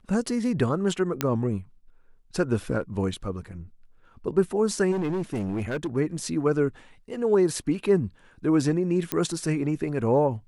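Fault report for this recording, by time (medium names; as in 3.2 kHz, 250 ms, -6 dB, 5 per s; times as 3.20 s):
1.21 s: pop -8 dBFS
4.91–5.97 s: clipped -24 dBFS
9.12 s: pop -8 dBFS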